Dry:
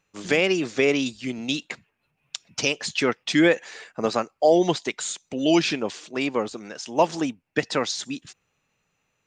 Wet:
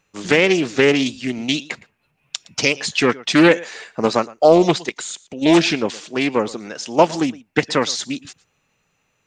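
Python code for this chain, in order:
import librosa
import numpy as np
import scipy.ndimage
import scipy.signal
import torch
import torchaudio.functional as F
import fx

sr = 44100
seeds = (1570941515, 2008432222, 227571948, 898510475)

y = fx.quant_dither(x, sr, seeds[0], bits=12, dither='none', at=(0.45, 0.97))
y = fx.level_steps(y, sr, step_db=12, at=(4.85, 5.41), fade=0.02)
y = y + 10.0 ** (-21.0 / 20.0) * np.pad(y, (int(114 * sr / 1000.0), 0))[:len(y)]
y = fx.doppler_dist(y, sr, depth_ms=0.27)
y = y * 10.0 ** (6.0 / 20.0)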